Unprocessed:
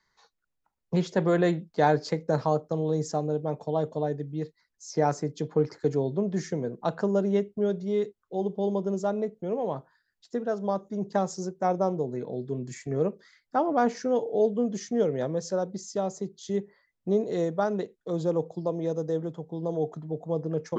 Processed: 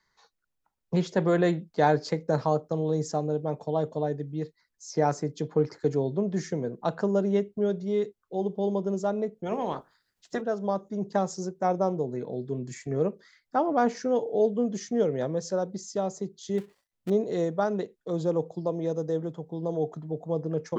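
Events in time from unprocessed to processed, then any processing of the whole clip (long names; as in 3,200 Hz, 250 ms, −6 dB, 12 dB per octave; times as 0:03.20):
0:09.45–0:10.40: ceiling on every frequency bin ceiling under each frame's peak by 17 dB
0:16.58–0:17.10: gap after every zero crossing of 0.22 ms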